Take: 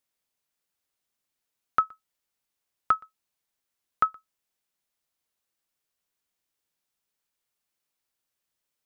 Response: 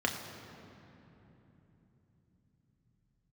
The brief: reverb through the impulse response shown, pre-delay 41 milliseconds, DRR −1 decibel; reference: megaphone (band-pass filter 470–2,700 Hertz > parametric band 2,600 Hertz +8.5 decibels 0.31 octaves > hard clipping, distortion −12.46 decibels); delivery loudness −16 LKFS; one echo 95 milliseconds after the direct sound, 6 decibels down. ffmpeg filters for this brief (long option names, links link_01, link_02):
-filter_complex "[0:a]aecho=1:1:95:0.501,asplit=2[link_01][link_02];[1:a]atrim=start_sample=2205,adelay=41[link_03];[link_02][link_03]afir=irnorm=-1:irlink=0,volume=-7dB[link_04];[link_01][link_04]amix=inputs=2:normalize=0,highpass=470,lowpass=2700,equalizer=frequency=2600:width_type=o:width=0.31:gain=8.5,asoftclip=type=hard:threshold=-18.5dB,volume=13dB"